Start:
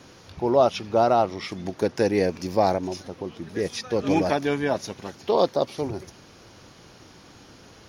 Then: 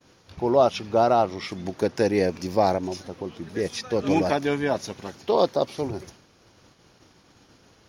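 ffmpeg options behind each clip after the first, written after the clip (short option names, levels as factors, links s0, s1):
-af "agate=range=0.0224:threshold=0.00794:ratio=3:detection=peak"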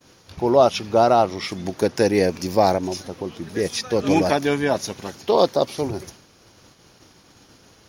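-af "highshelf=f=6900:g=9,volume=1.5"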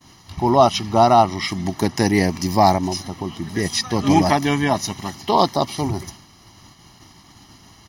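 -af "aecho=1:1:1:0.78,volume=1.33"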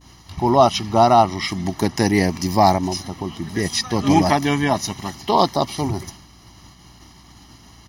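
-af "aeval=exprs='val(0)+0.00316*(sin(2*PI*60*n/s)+sin(2*PI*2*60*n/s)/2+sin(2*PI*3*60*n/s)/3+sin(2*PI*4*60*n/s)/4+sin(2*PI*5*60*n/s)/5)':c=same"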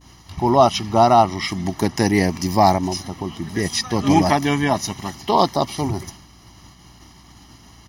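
-af "equalizer=f=4100:t=o:w=0.25:g=-2.5"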